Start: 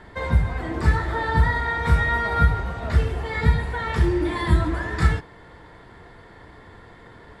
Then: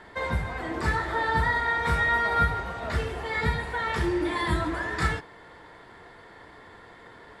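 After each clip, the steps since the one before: bass shelf 210 Hz -12 dB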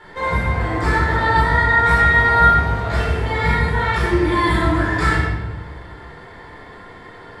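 simulated room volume 760 m³, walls mixed, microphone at 4.3 m; trim -1 dB

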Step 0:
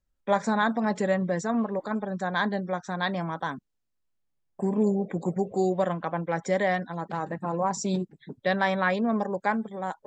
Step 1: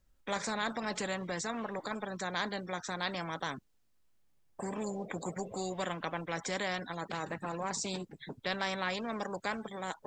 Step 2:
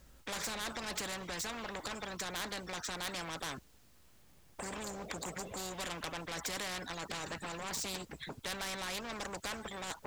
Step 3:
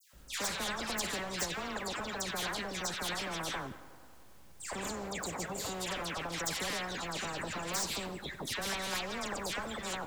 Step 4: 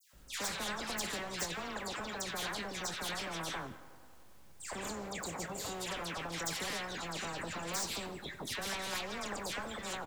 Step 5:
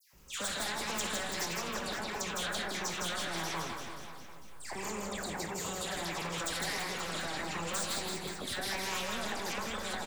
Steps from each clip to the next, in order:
spectrum-flattening compressor 2:1; trim -8 dB
saturation -33 dBFS, distortion -10 dB; peaking EQ 60 Hz +12.5 dB 0.77 oct; spectrum-flattening compressor 2:1; trim +7 dB
phase dispersion lows, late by 134 ms, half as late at 1.9 kHz; tape echo 92 ms, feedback 84%, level -16 dB, low-pass 3.1 kHz; on a send at -19.5 dB: reverberation RT60 0.80 s, pre-delay 120 ms; on the sum: trim +3.5 dB
doubling 24 ms -12 dB; trim -2.5 dB
drifting ripple filter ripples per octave 0.77, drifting +1.5 Hz, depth 8 dB; on a send: reverse bouncing-ball echo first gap 160 ms, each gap 1.1×, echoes 5

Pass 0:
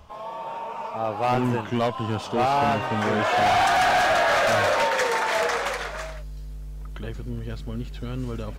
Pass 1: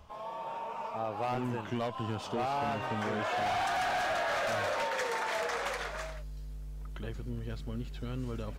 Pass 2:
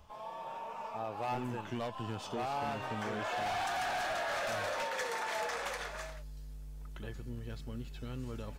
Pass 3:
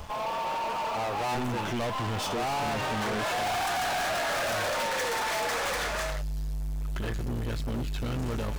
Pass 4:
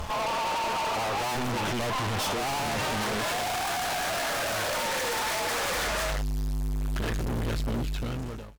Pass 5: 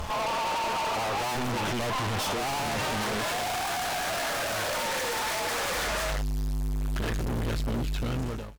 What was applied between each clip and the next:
compression, threshold -24 dBFS, peak gain reduction 6 dB; trim -6 dB
treble shelf 5.1 kHz +4.5 dB; feedback comb 860 Hz, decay 0.32 s, mix 70%; trim +6 dB
waveshaping leveller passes 5
fade out at the end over 1.27 s; vibrato 11 Hz 39 cents; sine folder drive 6 dB, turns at -25.5 dBFS; trim -1.5 dB
peak limiter -30.5 dBFS, peak gain reduction 5 dB; trim +3.5 dB

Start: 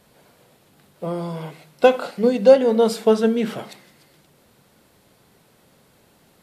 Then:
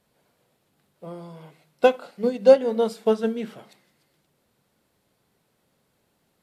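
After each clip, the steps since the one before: upward expansion 1.5:1, over -29 dBFS; trim -1.5 dB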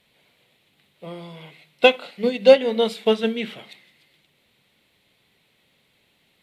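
high-order bell 2.8 kHz +12.5 dB 1.3 oct; trim +1.5 dB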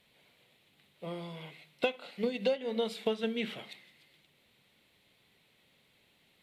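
compression 6:1, threshold -24 dBFS, peak gain reduction 16.5 dB; trim -4 dB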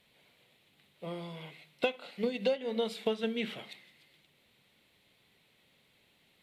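no audible change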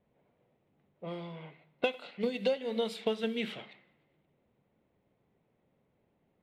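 thinning echo 102 ms, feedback 80%, high-pass 820 Hz, level -21 dB; level-controlled noise filter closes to 770 Hz, open at -31 dBFS

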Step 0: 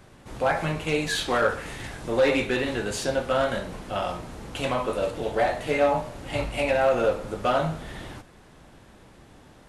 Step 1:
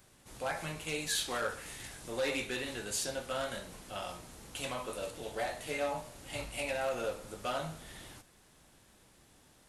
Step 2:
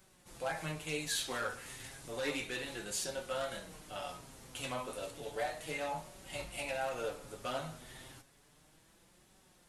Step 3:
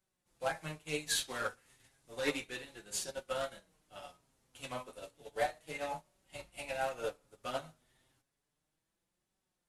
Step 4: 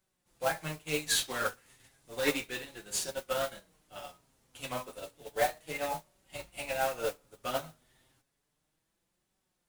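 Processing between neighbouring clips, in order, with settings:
pre-emphasis filter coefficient 0.8
flange 0.32 Hz, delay 5.2 ms, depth 2.9 ms, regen +37%; trim +1.5 dB
upward expansion 2.5:1, over -50 dBFS; trim +5 dB
modulation noise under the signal 13 dB; trim +4.5 dB

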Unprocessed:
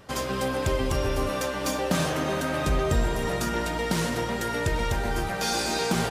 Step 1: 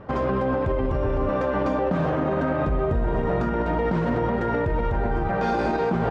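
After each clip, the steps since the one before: low-pass 1.2 kHz 12 dB/octave; in parallel at +3 dB: compressor with a negative ratio -30 dBFS; on the sum: peak limiter -15 dBFS, peak gain reduction 6.5 dB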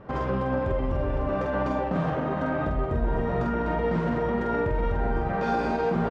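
doubling 47 ms -3 dB; trim -4.5 dB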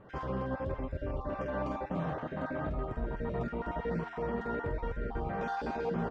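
random holes in the spectrogram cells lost 24%; flange 1 Hz, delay 9.7 ms, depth 6.9 ms, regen -82%; trim -3.5 dB

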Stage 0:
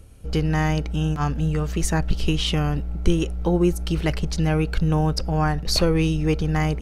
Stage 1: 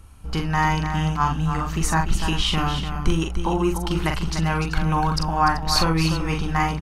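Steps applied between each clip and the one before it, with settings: graphic EQ 125/500/1000 Hz -3/-11/+12 dB; multi-tap echo 43/295/384 ms -5/-8/-13.5 dB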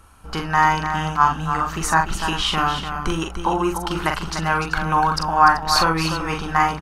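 FFT filter 110 Hz 0 dB, 1.5 kHz +15 dB, 2.1 kHz +8 dB; trim -6.5 dB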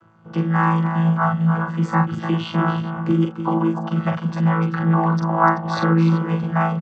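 vocoder on a held chord bare fifth, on A2; low-pass 2.6 kHz 6 dB/octave; comb 5.4 ms, depth 31%; trim +1.5 dB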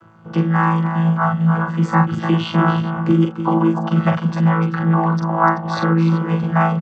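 gain riding within 4 dB 0.5 s; trim +2.5 dB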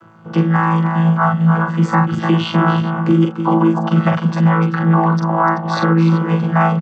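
high-pass 110 Hz 12 dB/octave; loudness maximiser +6.5 dB; trim -3 dB

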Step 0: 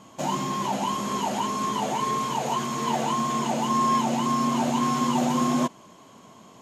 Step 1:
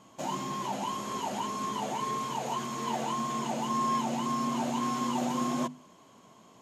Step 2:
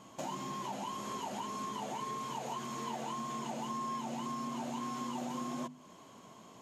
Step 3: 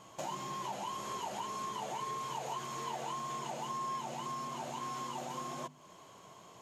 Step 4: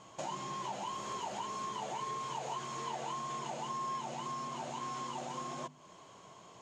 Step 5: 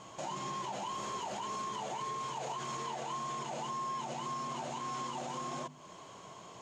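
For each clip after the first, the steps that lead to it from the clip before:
hum notches 50/100/150/200/250 Hz; trim -6.5 dB
compression 3:1, threshold -41 dBFS, peak gain reduction 11.5 dB; trim +1.5 dB
peaking EQ 240 Hz -12.5 dB 0.53 oct; trim +1 dB
low-pass 8.4 kHz 24 dB/octave
peak limiter -35.5 dBFS, peak gain reduction 7 dB; trim +4.5 dB

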